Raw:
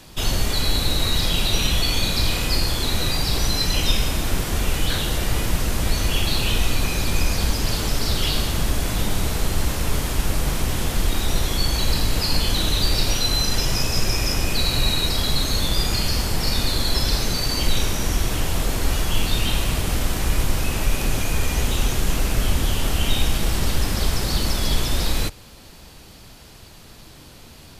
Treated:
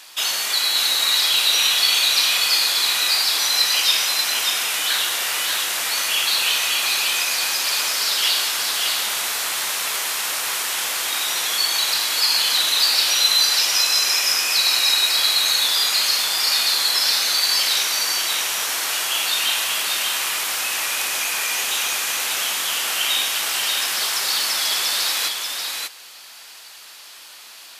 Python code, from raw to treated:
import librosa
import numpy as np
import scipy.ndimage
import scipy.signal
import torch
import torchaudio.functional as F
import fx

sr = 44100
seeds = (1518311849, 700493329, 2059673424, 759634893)

y = scipy.signal.sosfilt(scipy.signal.butter(2, 1200.0, 'highpass', fs=sr, output='sos'), x)
y = y + 10.0 ** (-4.0 / 20.0) * np.pad(y, (int(586 * sr / 1000.0), 0))[:len(y)]
y = y * librosa.db_to_amplitude(6.0)